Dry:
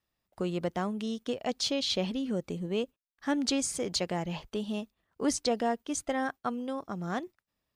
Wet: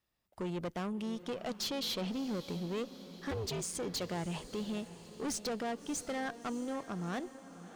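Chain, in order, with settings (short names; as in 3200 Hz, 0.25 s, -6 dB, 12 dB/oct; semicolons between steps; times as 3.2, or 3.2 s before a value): 3.3–3.73 ring modulator 220 Hz -> 77 Hz; tube stage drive 33 dB, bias 0.25; diffused feedback echo 0.635 s, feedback 54%, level -14 dB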